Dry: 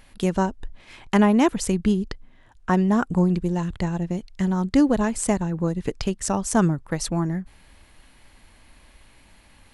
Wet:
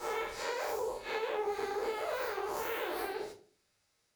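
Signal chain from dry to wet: time blur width 0.339 s; HPF 320 Hz 6 dB/oct; gate with hold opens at -45 dBFS; harmonic-percussive split harmonic -4 dB; compressor, threshold -40 dBFS, peak gain reduction 14 dB; shoebox room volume 160 m³, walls mixed, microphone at 1 m; speed mistake 33 rpm record played at 78 rpm; gain +2.5 dB

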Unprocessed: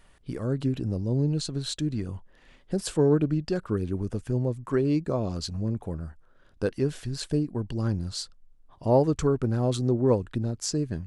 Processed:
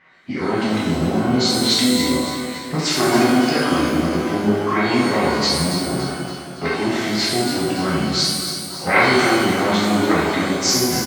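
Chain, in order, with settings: low-pass opened by the level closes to 2200 Hz, open at -22.5 dBFS; gate -53 dBFS, range -9 dB; notches 60/120/180/240/300/360/420/480/540 Hz; treble ducked by the level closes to 2800 Hz, closed at -19 dBFS; dynamic EQ 420 Hz, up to -5 dB, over -38 dBFS, Q 2.5; in parallel at -1 dB: compressor 6:1, threshold -38 dBFS, peak gain reduction 19 dB; on the sum: formant-preserving pitch shift -3.5 st; sine folder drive 12 dB, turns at -8 dBFS; speaker cabinet 280–7100 Hz, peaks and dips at 340 Hz -5 dB, 480 Hz -10 dB, 870 Hz -7 dB, 2100 Hz +8 dB, 3100 Hz -4 dB; on a send: feedback echo 0.282 s, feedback 53%, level -9 dB; on the sum: shimmer reverb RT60 1.1 s, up +12 st, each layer -8 dB, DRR -7 dB; gain -5.5 dB

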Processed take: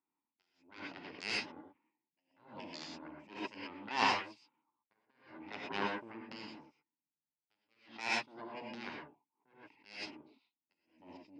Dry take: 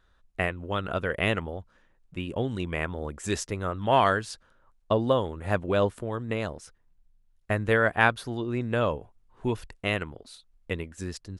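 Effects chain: low-pass opened by the level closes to 1900 Hz, open at -22 dBFS; gate -57 dBFS, range -7 dB; high shelf 2900 Hz -4 dB; in parallel at -2 dB: compressor, threshold -36 dBFS, peak gain reduction 19 dB; on the sum: vowel filter u; added harmonics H 2 -13 dB, 3 -22 dB, 7 -15 dB, 8 -25 dB, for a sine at -21.5 dBFS; speaker cabinet 190–9600 Hz, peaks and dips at 310 Hz -5 dB, 1900 Hz +3 dB, 2700 Hz +6 dB, 5000 Hz +9 dB; non-linear reverb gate 0.14 s rising, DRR 1.5 dB; attack slew limiter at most 120 dB/s; gain +4 dB

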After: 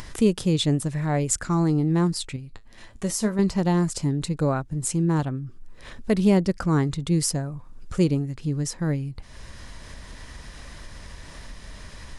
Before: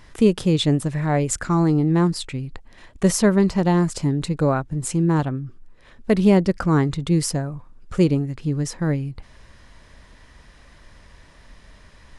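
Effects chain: tone controls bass +2 dB, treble +6 dB; upward compressor, threshold -24 dBFS; 2.36–3.39 resonator 110 Hz, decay 0.17 s, harmonics all, mix 70%; gain -4.5 dB

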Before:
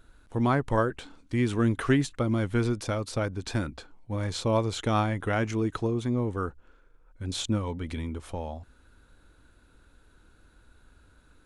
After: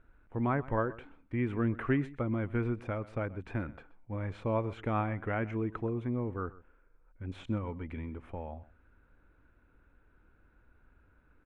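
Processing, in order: EQ curve 2400 Hz 0 dB, 4300 Hz -23 dB, 6500 Hz -25 dB; echo 0.128 s -19 dB; gain -6 dB

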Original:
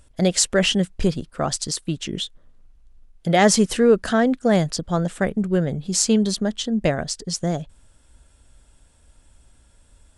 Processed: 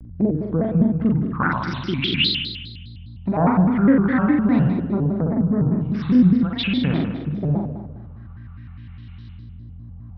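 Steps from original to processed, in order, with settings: steep low-pass 4800 Hz 96 dB/oct; treble ducked by the level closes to 910 Hz, closed at -17 dBFS; HPF 120 Hz; band shelf 530 Hz -15 dB 1.2 oct; in parallel at -1.5 dB: compressor, threshold -27 dBFS, peak gain reduction 11.5 dB; on the sum: LFO low-pass saw up 0.43 Hz 360–3800 Hz; hum 50 Hz, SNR 14 dB; flutter echo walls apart 8.7 m, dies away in 1.2 s; shaped vibrato square 4.9 Hz, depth 250 cents; gain -1.5 dB

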